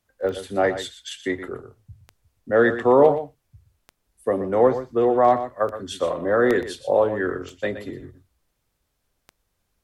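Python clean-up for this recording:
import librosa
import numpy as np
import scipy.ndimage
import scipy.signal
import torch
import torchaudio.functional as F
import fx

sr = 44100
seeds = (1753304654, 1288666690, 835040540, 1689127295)

y = fx.fix_declick_ar(x, sr, threshold=10.0)
y = fx.fix_echo_inverse(y, sr, delay_ms=121, level_db=-11.5)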